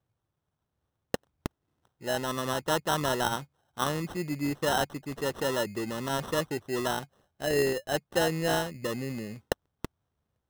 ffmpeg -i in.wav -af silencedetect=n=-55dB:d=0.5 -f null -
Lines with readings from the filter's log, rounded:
silence_start: 0.00
silence_end: 1.14 | silence_duration: 1.14
silence_start: 9.86
silence_end: 10.50 | silence_duration: 0.64